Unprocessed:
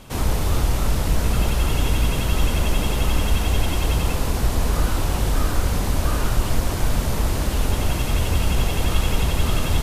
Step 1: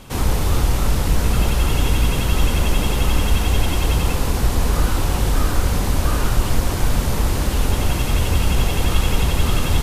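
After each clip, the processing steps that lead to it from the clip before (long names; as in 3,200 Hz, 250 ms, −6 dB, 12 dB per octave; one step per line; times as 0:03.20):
notch filter 640 Hz, Q 15
level +2.5 dB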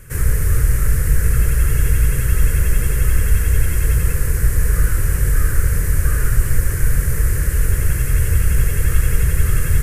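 drawn EQ curve 140 Hz 0 dB, 240 Hz −17 dB, 460 Hz −5 dB, 810 Hz −25 dB, 1,700 Hz +3 dB, 3,600 Hz −21 dB, 8,900 Hz +2 dB
level +3 dB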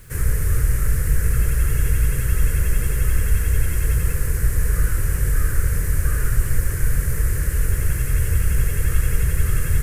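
bit-depth reduction 8 bits, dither none
level −3.5 dB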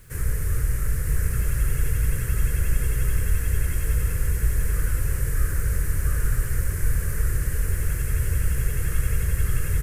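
single-tap delay 968 ms −5.5 dB
level −5 dB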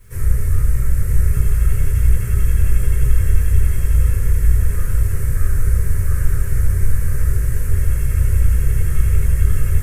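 convolution reverb RT60 0.30 s, pre-delay 3 ms, DRR −6.5 dB
level −8.5 dB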